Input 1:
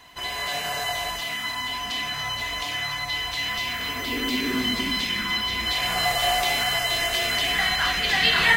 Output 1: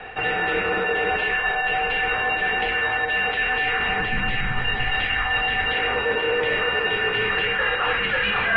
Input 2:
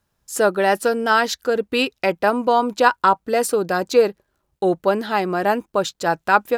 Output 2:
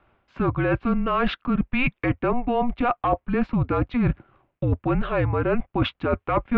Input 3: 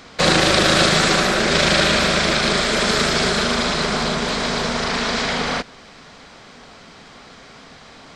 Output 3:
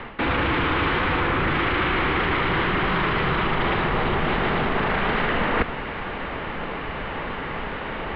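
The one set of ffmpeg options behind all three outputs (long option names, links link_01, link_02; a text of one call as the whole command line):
ffmpeg -i in.wav -af "apsyclip=14.5dB,highpass=frequency=180:width_type=q:width=0.5412,highpass=frequency=180:width_type=q:width=1.307,lowpass=frequency=3000:width_type=q:width=0.5176,lowpass=frequency=3000:width_type=q:width=0.7071,lowpass=frequency=3000:width_type=q:width=1.932,afreqshift=-250,areverse,acompressor=threshold=-19dB:ratio=12,areverse" out.wav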